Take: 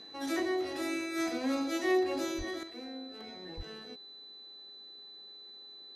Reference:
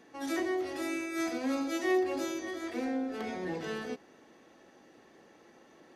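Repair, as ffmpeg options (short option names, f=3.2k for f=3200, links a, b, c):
-filter_complex "[0:a]bandreject=f=412:t=h:w=4,bandreject=f=824:t=h:w=4,bandreject=f=1.236k:t=h:w=4,bandreject=f=1.648k:t=h:w=4,bandreject=f=4k:w=30,asplit=3[a][b][c];[a]afade=t=out:st=2.37:d=0.02[d];[b]highpass=f=140:w=0.5412,highpass=f=140:w=1.3066,afade=t=in:st=2.37:d=0.02,afade=t=out:st=2.49:d=0.02[e];[c]afade=t=in:st=2.49:d=0.02[f];[d][e][f]amix=inputs=3:normalize=0,asplit=3[g][h][i];[g]afade=t=out:st=3.56:d=0.02[j];[h]highpass=f=140:w=0.5412,highpass=f=140:w=1.3066,afade=t=in:st=3.56:d=0.02,afade=t=out:st=3.68:d=0.02[k];[i]afade=t=in:st=3.68:d=0.02[l];[j][k][l]amix=inputs=3:normalize=0,asetnsamples=n=441:p=0,asendcmd='2.63 volume volume 11dB',volume=0dB"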